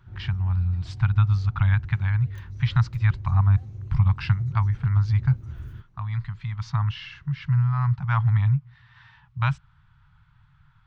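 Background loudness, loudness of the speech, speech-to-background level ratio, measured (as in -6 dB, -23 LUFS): -39.0 LUFS, -24.5 LUFS, 14.5 dB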